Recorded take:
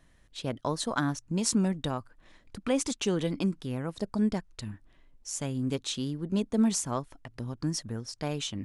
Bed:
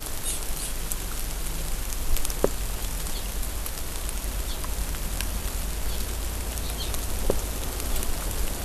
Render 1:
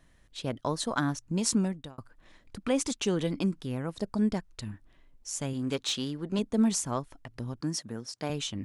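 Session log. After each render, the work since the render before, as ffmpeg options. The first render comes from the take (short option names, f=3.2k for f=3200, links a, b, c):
-filter_complex "[0:a]asettb=1/sr,asplit=3[a][b][c];[a]atrim=end=5.534[d];[b]atrim=start=5.53:end=6.39,asetpts=PTS-STARTPTS,afade=t=in:d=0.004:c=qsin,afade=t=out:st=0.856:d=0.004:c=qsin,asplit=2[e][f];[f]highpass=f=720:p=1,volume=11dB,asoftclip=type=tanh:threshold=-17dB[g];[e][g]amix=inputs=2:normalize=0,lowpass=f=5k:p=1,volume=-6dB[h];[c]atrim=start=6.386[i];[d][h]acrossfade=d=0.004:c1=hsin:c2=qsin[j];[j][i]acrossfade=d=0.004:c1=qsin:c2=hsin,asettb=1/sr,asplit=3[k][l][m];[k]atrim=end=7.614[n];[l]atrim=start=7.61:end=8.3,asetpts=PTS-STARTPTS,afade=t=in:d=0.004:c=qsin,afade=t=out:st=0.686:d=0.004:c=qsin,highpass=160[o];[m]atrim=start=8.296[p];[n][o]acrossfade=d=0.004:c1=hsin:c2=qsin[q];[q][p]acrossfade=d=0.004:c1=qsin:c2=hsin,asplit=2[r][s];[r]atrim=end=1.98,asetpts=PTS-STARTPTS,afade=t=out:st=1.56:d=0.42[t];[s]atrim=start=1.98,asetpts=PTS-STARTPTS,afade=t=in:d=0.004:c=hsin[u];[t][u]concat=n=2:v=0:a=1"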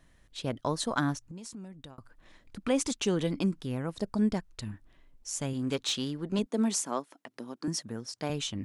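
-filter_complex "[0:a]asettb=1/sr,asplit=3[a][b][c];[a]atrim=end=1.174[d];[b]atrim=start=1.17:end=2.56,asetpts=PTS-STARTPTS,afade=t=in:d=0.004:c=qsin,afade=t=out:st=1.386:d=0.004:c=qsin,acompressor=threshold=-41dB:ratio=8:attack=3.2:release=140:knee=1:detection=peak[e];[c]atrim=start=2.556[f];[d][e]acrossfade=d=0.004:c1=hsin:c2=qsin[g];[g][f]acrossfade=d=0.004:c1=qsin:c2=hsin,asettb=1/sr,asplit=3[h][i][j];[h]atrim=end=6.464[k];[i]atrim=start=6.46:end=7.68,asetpts=PTS-STARTPTS,afade=t=in:d=0.004:c=qsin,afade=t=out:st=1.216:d=0.004:c=qsin,highpass=f=230:w=0.5412,highpass=f=230:w=1.3066[l];[j]atrim=start=7.676[m];[k][l]acrossfade=d=0.004:c1=hsin:c2=qsin[n];[n][m]acrossfade=d=0.004:c1=qsin:c2=hsin"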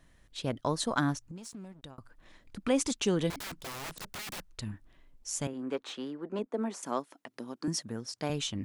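-filter_complex "[0:a]asettb=1/sr,asplit=3[a][b][c];[a]atrim=end=1.364[d];[b]atrim=start=1.36:end=1.83,asetpts=PTS-STARTPTS,afade=t=in:d=0.004:c=qsin,afade=t=out:st=0.466:d=0.004:c=qsin,aeval=exprs='sgn(val(0))*max(abs(val(0))-0.00141,0)':c=same[e];[c]atrim=start=1.826[f];[d][e]acrossfade=d=0.004:c1=hsin:c2=qsin[g];[g][f]acrossfade=d=0.004:c1=qsin:c2=hsin,asettb=1/sr,asplit=3[h][i][j];[h]atrim=end=3.304[k];[i]atrim=start=3.3:end=4.54,asetpts=PTS-STARTPTS,afade=t=in:d=0.004:c=qsin,afade=t=out:st=1.236:d=0.004:c=qsin,aeval=exprs='(mod(59.6*val(0)+1,2)-1)/59.6':c=same[l];[j]atrim=start=4.536[m];[k][l]acrossfade=d=0.004:c1=hsin:c2=qsin[n];[n][m]acrossfade=d=0.004:c1=qsin:c2=hsin,asettb=1/sr,asplit=3[o][p][q];[o]atrim=end=5.474[r];[p]atrim=start=5.47:end=6.83,asetpts=PTS-STARTPTS,afade=t=in:d=0.004:c=qsin,afade=t=out:st=1.356:d=0.004:c=qsin,acrossover=split=250 2100:gain=0.0794 1 0.158[s][t][u];[s][t][u]amix=inputs=3:normalize=0[v];[q]atrim=start=6.826[w];[r][v]acrossfade=d=0.004:c1=hsin:c2=qsin[x];[x][w]acrossfade=d=0.004:c1=qsin:c2=hsin"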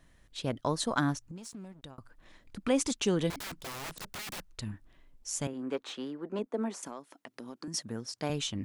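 -filter_complex "[0:a]asettb=1/sr,asplit=3[a][b][c];[a]atrim=end=6.874[d];[b]atrim=start=6.87:end=7.74,asetpts=PTS-STARTPTS,afade=t=in:d=0.004:c=qsin,afade=t=out:st=0.866:d=0.004:c=qsin,acompressor=threshold=-39dB:ratio=4:attack=3.2:release=140:knee=1:detection=peak[e];[c]atrim=start=7.736[f];[d][e]acrossfade=d=0.004:c1=hsin:c2=qsin[g];[g][f]acrossfade=d=0.004:c1=qsin:c2=hsin"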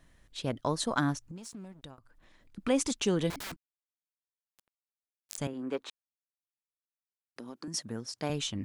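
-filter_complex "[0:a]asettb=1/sr,asplit=3[a][b][c];[a]atrim=end=1.984[d];[b]atrim=start=1.98:end=2.58,asetpts=PTS-STARTPTS,afade=t=in:d=0.004:c=qsin,afade=t=out:st=0.596:d=0.004:c=qsin,acompressor=threshold=-56dB:ratio=6:attack=3.2:release=140:knee=1:detection=peak[e];[c]atrim=start=2.576[f];[d][e]acrossfade=d=0.004:c1=hsin:c2=qsin[g];[g][f]acrossfade=d=0.004:c1=qsin:c2=hsin,asettb=1/sr,asplit=3[h][i][j];[h]atrim=end=3.564[k];[i]atrim=start=3.56:end=5.38,asetpts=PTS-STARTPTS,afade=t=in:d=0.004:c=qsin,afade=t=out:st=1.816:d=0.004:c=qsin,acrusher=bits=3:mix=0:aa=0.5[l];[j]atrim=start=5.376[m];[k][l]acrossfade=d=0.004:c1=hsin:c2=qsin[n];[n][m]acrossfade=d=0.004:c1=qsin:c2=hsin,asplit=3[o][p][q];[o]atrim=end=5.9,asetpts=PTS-STARTPTS,afade=t=out:st=5.896:d=0.004:c=hsin[r];[p]atrim=start=5.9:end=7.36,asetpts=PTS-STARTPTS,volume=0[s];[q]atrim=start=7.36,asetpts=PTS-STARTPTS,afade=t=in:d=0.004:c=hsin[t];[r][s][t]concat=n=3:v=0:a=1"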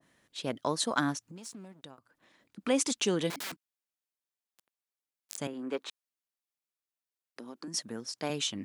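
-af "highpass=190,adynamicequalizer=threshold=0.00708:dfrequency=1600:dqfactor=0.7:tfrequency=1600:tqfactor=0.7:attack=5:release=100:ratio=0.375:range=1.5:mode=boostabove:tftype=highshelf"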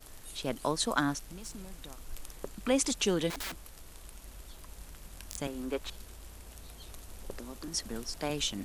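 -filter_complex "[1:a]volume=-18.5dB[a];[0:a][a]amix=inputs=2:normalize=0"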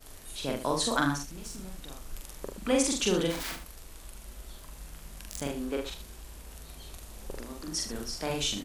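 -filter_complex "[0:a]asplit=2[a][b];[b]adelay=43,volume=-2dB[c];[a][c]amix=inputs=2:normalize=0,aecho=1:1:76:0.299"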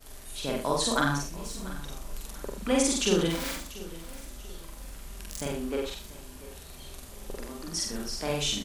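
-filter_complex "[0:a]asplit=2[a][b];[b]adelay=48,volume=-3dB[c];[a][c]amix=inputs=2:normalize=0,aecho=1:1:690|1380|2070:0.133|0.0507|0.0193"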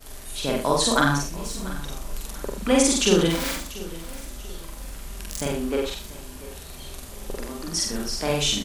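-af "volume=6dB"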